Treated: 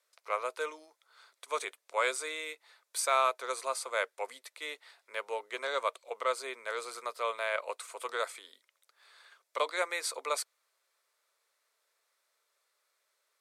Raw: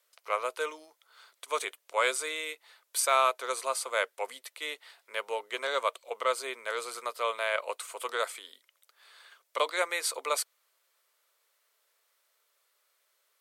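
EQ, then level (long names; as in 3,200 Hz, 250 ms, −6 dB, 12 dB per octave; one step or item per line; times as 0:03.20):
high-pass filter 170 Hz
Bessel low-pass filter 10,000 Hz, order 2
parametric band 3,000 Hz −6 dB 0.22 octaves
−2.5 dB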